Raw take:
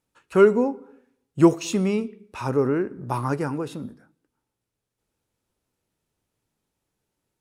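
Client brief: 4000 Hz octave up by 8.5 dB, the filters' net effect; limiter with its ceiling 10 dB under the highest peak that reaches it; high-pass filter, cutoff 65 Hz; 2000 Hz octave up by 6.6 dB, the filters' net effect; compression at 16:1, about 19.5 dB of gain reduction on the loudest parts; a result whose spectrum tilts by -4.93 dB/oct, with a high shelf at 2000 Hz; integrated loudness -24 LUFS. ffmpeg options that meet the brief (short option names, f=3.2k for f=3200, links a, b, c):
-af "highpass=65,highshelf=f=2k:g=4,equalizer=f=2k:t=o:g=6,equalizer=f=4k:t=o:g=5,acompressor=threshold=-28dB:ratio=16,volume=12dB,alimiter=limit=-12.5dB:level=0:latency=1"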